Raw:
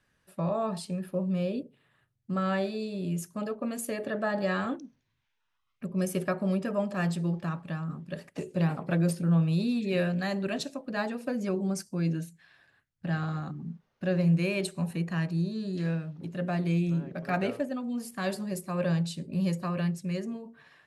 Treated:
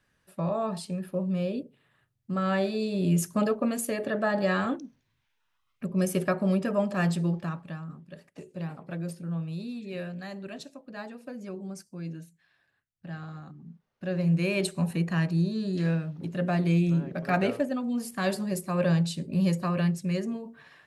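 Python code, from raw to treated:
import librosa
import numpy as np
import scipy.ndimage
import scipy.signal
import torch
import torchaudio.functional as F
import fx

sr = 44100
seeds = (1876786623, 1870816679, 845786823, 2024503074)

y = fx.gain(x, sr, db=fx.line((2.36, 0.5), (3.33, 9.5), (3.89, 3.0), (7.22, 3.0), (8.14, -8.5), (13.64, -8.5), (14.64, 3.5)))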